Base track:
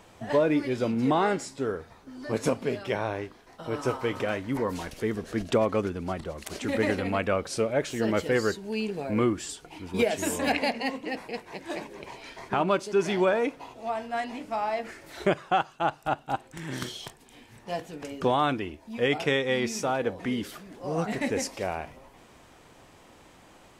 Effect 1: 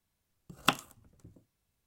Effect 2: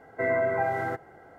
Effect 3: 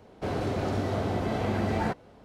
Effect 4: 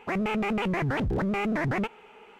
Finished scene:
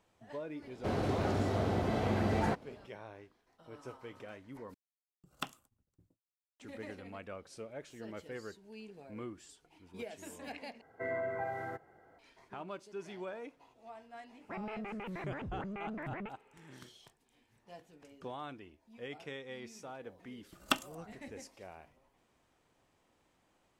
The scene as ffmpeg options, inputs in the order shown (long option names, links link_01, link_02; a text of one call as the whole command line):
ffmpeg -i bed.wav -i cue0.wav -i cue1.wav -i cue2.wav -i cue3.wav -filter_complex "[1:a]asplit=2[link_01][link_02];[0:a]volume=-19.5dB[link_03];[link_01]agate=range=-33dB:threshold=-57dB:ratio=3:release=100:detection=peak[link_04];[2:a]acontrast=79[link_05];[4:a]lowpass=frequency=2900:width=0.5412,lowpass=frequency=2900:width=1.3066[link_06];[link_02]aecho=1:1:3.3:0.65[link_07];[link_03]asplit=3[link_08][link_09][link_10];[link_08]atrim=end=4.744[link_11];[link_04]atrim=end=1.86,asetpts=PTS-STARTPTS,volume=-13.5dB[link_12];[link_09]atrim=start=6.596:end=10.814[link_13];[link_05]atrim=end=1.38,asetpts=PTS-STARTPTS,volume=-18dB[link_14];[link_10]atrim=start=12.186[link_15];[3:a]atrim=end=2.24,asetpts=PTS-STARTPTS,volume=-3.5dB,afade=type=in:duration=0.004:curve=hsin,afade=type=out:start_time=2.236:duration=0.004:curve=hsin,adelay=620[link_16];[link_06]atrim=end=2.39,asetpts=PTS-STARTPTS,volume=-14.5dB,afade=type=in:duration=0.004:curve=hsin,afade=type=out:start_time=2.386:duration=0.004:curve=hsin,adelay=14420[link_17];[link_07]atrim=end=1.86,asetpts=PTS-STARTPTS,volume=-5.5dB,afade=type=in:duration=0.004:curve=hsin,afade=type=out:start_time=1.856:duration=0.004:curve=hsin,adelay=20030[link_18];[link_11][link_12]acrossfade=duration=0.004:curve1=hsin:curve2=hsin[link_19];[link_19][link_13]acrossfade=duration=0.004:curve1=hsin:curve2=hsin[link_20];[link_20][link_14]acrossfade=duration=0.004:curve1=hsin:curve2=hsin[link_21];[link_21][link_15]acrossfade=duration=0.004:curve1=hsin:curve2=hsin[link_22];[link_22][link_16][link_17][link_18]amix=inputs=4:normalize=0" out.wav